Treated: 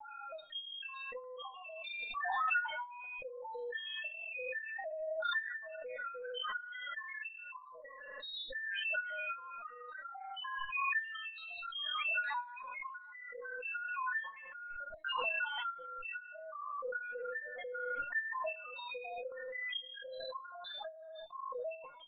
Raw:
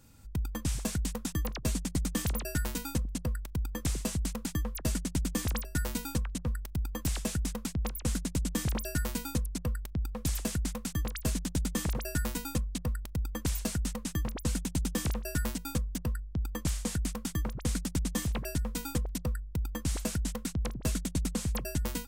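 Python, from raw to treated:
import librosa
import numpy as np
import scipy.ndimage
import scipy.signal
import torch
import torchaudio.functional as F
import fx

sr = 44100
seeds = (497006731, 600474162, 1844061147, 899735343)

p1 = fx.spec_dropout(x, sr, seeds[0], share_pct=57)
p2 = scipy.signal.sosfilt(scipy.signal.cheby2(4, 70, 160.0, 'highpass', fs=sr, output='sos'), p1)
p3 = fx.over_compress(p2, sr, threshold_db=-46.0, ratio=-0.5)
p4 = p2 + (p3 * 10.0 ** (-2.5 / 20.0))
p5 = fx.cheby_harmonics(p4, sr, harmonics=(4, 6, 7), levels_db=(-43, -39, -31), full_scale_db=-24.5)
p6 = fx.rotary(p5, sr, hz=0.7)
p7 = fx.spec_topn(p6, sr, count=2)
p8 = fx.doubler(p7, sr, ms=37.0, db=-8.5)
p9 = fx.echo_feedback(p8, sr, ms=81, feedback_pct=48, wet_db=-17.0)
p10 = fx.lpc_vocoder(p9, sr, seeds[1], excitation='pitch_kept', order=16)
p11 = fx.pre_swell(p10, sr, db_per_s=21.0)
y = p11 * 10.0 ** (14.0 / 20.0)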